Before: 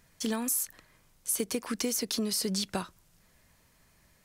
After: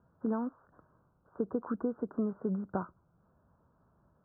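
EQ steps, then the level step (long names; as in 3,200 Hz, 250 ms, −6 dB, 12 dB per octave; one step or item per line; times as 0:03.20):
high-pass filter 67 Hz
Butterworth low-pass 1,500 Hz 96 dB per octave
high-frequency loss of the air 230 metres
0.0 dB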